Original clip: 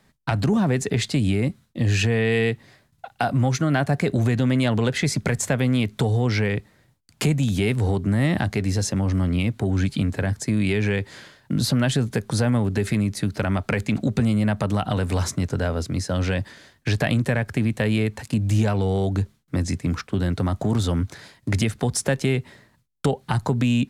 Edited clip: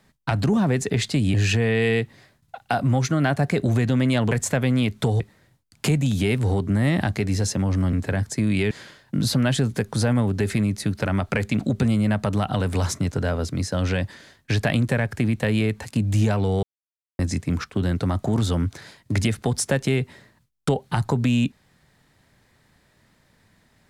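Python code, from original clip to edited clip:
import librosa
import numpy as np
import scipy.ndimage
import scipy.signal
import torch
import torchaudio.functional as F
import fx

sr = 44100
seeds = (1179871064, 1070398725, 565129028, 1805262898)

y = fx.edit(x, sr, fx.cut(start_s=1.34, length_s=0.5),
    fx.cut(start_s=4.81, length_s=0.47),
    fx.cut(start_s=6.17, length_s=0.4),
    fx.cut(start_s=9.3, length_s=0.73),
    fx.cut(start_s=10.81, length_s=0.27),
    fx.silence(start_s=19.0, length_s=0.56), tone=tone)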